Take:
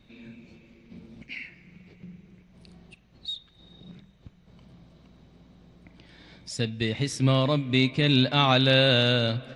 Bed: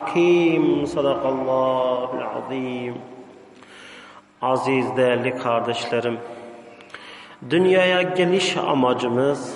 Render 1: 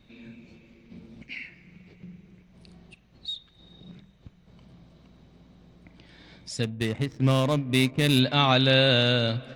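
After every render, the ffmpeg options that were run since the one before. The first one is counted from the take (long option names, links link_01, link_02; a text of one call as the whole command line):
ffmpeg -i in.wav -filter_complex "[0:a]asplit=3[link_01][link_02][link_03];[link_01]afade=type=out:start_time=6.62:duration=0.02[link_04];[link_02]adynamicsmooth=sensitivity=4:basefreq=730,afade=type=in:start_time=6.62:duration=0.02,afade=type=out:start_time=8.18:duration=0.02[link_05];[link_03]afade=type=in:start_time=8.18:duration=0.02[link_06];[link_04][link_05][link_06]amix=inputs=3:normalize=0" out.wav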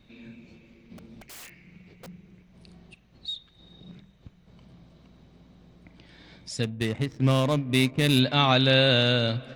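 ffmpeg -i in.wav -filter_complex "[0:a]asplit=3[link_01][link_02][link_03];[link_01]afade=type=out:start_time=0.97:duration=0.02[link_04];[link_02]aeval=exprs='(mod(89.1*val(0)+1,2)-1)/89.1':channel_layout=same,afade=type=in:start_time=0.97:duration=0.02,afade=type=out:start_time=2.06:duration=0.02[link_05];[link_03]afade=type=in:start_time=2.06:duration=0.02[link_06];[link_04][link_05][link_06]amix=inputs=3:normalize=0" out.wav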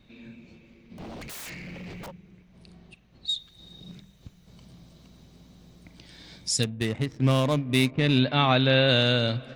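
ffmpeg -i in.wav -filter_complex "[0:a]asplit=3[link_01][link_02][link_03];[link_01]afade=type=out:start_time=0.98:duration=0.02[link_04];[link_02]aeval=exprs='0.015*sin(PI/2*3.98*val(0)/0.015)':channel_layout=same,afade=type=in:start_time=0.98:duration=0.02,afade=type=out:start_time=2.1:duration=0.02[link_05];[link_03]afade=type=in:start_time=2.1:duration=0.02[link_06];[link_04][link_05][link_06]amix=inputs=3:normalize=0,asettb=1/sr,asplit=3[link_07][link_08][link_09];[link_07]atrim=end=3.294[link_10];[link_08]atrim=start=3.29:end=6.64,asetpts=PTS-STARTPTS,afade=type=in:duration=0.004:curve=qsin,afade=type=out:start_time=3.346:duration=0.004:curve=qsin,bass=frequency=250:gain=2,treble=frequency=4000:gain=14[link_11];[link_09]atrim=start=6.636[link_12];[link_10][link_11]acrossfade=duration=0.004:curve1=hsin:curve2=qsin[link_13];[link_13][link_12]acrossfade=duration=0.004:curve1=qsin:curve2=hsin,asplit=3[link_14][link_15][link_16];[link_14]afade=type=out:start_time=7.9:duration=0.02[link_17];[link_15]lowpass=3600,afade=type=in:start_time=7.9:duration=0.02,afade=type=out:start_time=8.87:duration=0.02[link_18];[link_16]afade=type=in:start_time=8.87:duration=0.02[link_19];[link_17][link_18][link_19]amix=inputs=3:normalize=0" out.wav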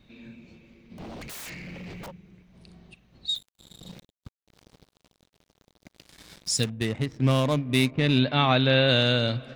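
ffmpeg -i in.wav -filter_complex "[0:a]asettb=1/sr,asplit=3[link_01][link_02][link_03];[link_01]atrim=end=3.354[link_04];[link_02]atrim=start=3.35:end=6.7,asetpts=PTS-STARTPTS,afade=type=in:duration=0.004:curve=qsin,afade=type=out:start_time=3.346:duration=0.004:curve=qsin,acrusher=bits=6:mix=0:aa=0.5[link_05];[link_03]atrim=start=6.696[link_06];[link_04][link_05]acrossfade=duration=0.004:curve1=hsin:curve2=qsin[link_07];[link_07][link_06]acrossfade=duration=0.004:curve1=qsin:curve2=hsin" out.wav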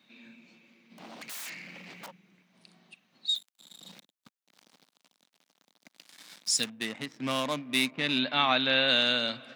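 ffmpeg -i in.wav -af "highpass=frequency=230:width=0.5412,highpass=frequency=230:width=1.3066,equalizer=frequency=400:width_type=o:width=1.3:gain=-11.5" out.wav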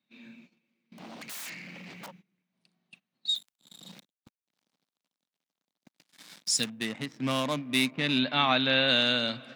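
ffmpeg -i in.wav -af "lowshelf=frequency=180:gain=9.5,agate=range=-19dB:threshold=-53dB:ratio=16:detection=peak" out.wav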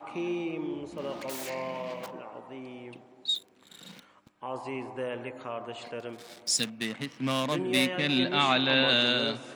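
ffmpeg -i in.wav -i bed.wav -filter_complex "[1:a]volume=-16dB[link_01];[0:a][link_01]amix=inputs=2:normalize=0" out.wav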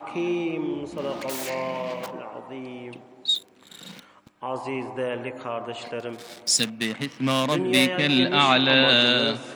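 ffmpeg -i in.wav -af "volume=6dB" out.wav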